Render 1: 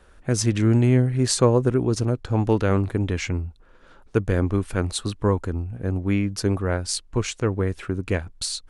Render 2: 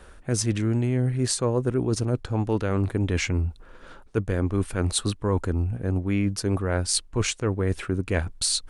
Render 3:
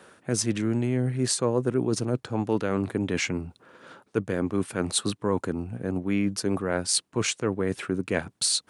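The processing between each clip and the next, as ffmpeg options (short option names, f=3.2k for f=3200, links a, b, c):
-af "equalizer=f=9k:w=4.3:g=4.5,areverse,acompressor=threshold=-27dB:ratio=6,areverse,volume=6dB"
-af "highpass=f=130:w=0.5412,highpass=f=130:w=1.3066"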